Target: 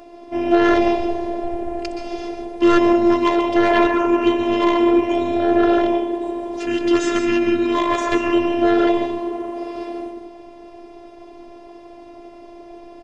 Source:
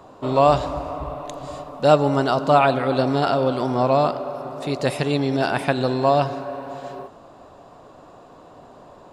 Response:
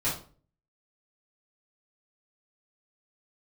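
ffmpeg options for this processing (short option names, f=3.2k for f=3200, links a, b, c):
-filter_complex "[0:a]asetrate=30870,aresample=44100,equalizer=f=98:t=o:w=1.1:g=-13,asplit=2[a][b];[1:a]atrim=start_sample=2205,adelay=118[c];[b][c]afir=irnorm=-1:irlink=0,volume=-13dB[d];[a][d]amix=inputs=2:normalize=0,aeval=exprs='0.75*sin(PI/2*2.51*val(0)/0.75)':c=same,afftfilt=real='hypot(re,im)*cos(PI*b)':imag='0':win_size=512:overlap=0.75,volume=-3dB"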